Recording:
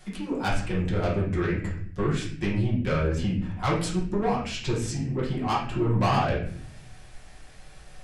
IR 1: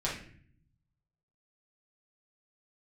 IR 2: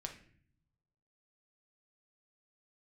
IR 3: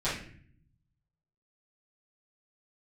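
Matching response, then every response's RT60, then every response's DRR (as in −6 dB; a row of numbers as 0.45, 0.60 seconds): 1; 0.50, 0.55, 0.50 seconds; −6.5, 3.0, −13.0 decibels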